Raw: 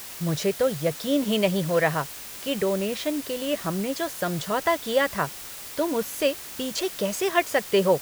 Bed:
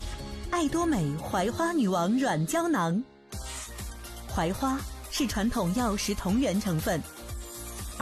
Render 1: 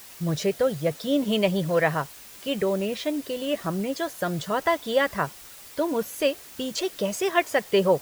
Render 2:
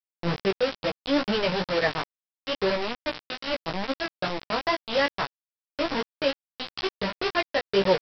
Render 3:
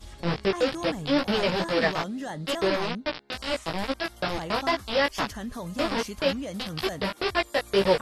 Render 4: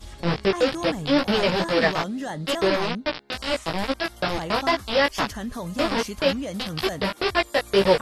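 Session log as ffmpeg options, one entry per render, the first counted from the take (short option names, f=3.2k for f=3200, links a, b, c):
-af "afftdn=nr=7:nf=-39"
-af "aresample=11025,acrusher=bits=3:mix=0:aa=0.000001,aresample=44100,flanger=delay=15:depth=3.1:speed=2.3"
-filter_complex "[1:a]volume=-8dB[a];[0:a][a]amix=inputs=2:normalize=0"
-af "volume=3.5dB"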